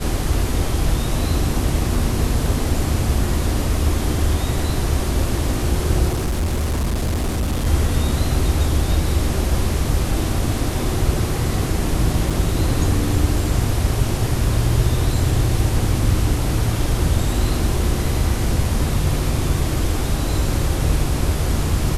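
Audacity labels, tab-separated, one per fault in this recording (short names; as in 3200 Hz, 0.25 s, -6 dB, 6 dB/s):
6.080000	7.670000	clipped -17 dBFS
12.300000	12.310000	gap 5.6 ms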